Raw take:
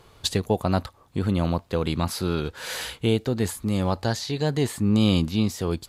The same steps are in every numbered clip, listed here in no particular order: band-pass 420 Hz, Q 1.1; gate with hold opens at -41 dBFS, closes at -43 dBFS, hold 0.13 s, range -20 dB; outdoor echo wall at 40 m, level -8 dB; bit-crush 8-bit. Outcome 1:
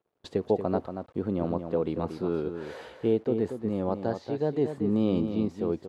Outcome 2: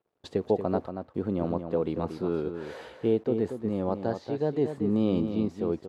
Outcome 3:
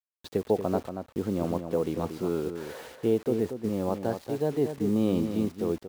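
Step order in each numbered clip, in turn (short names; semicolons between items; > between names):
outdoor echo > bit-crush > band-pass > gate with hold; bit-crush > outdoor echo > gate with hold > band-pass; band-pass > gate with hold > bit-crush > outdoor echo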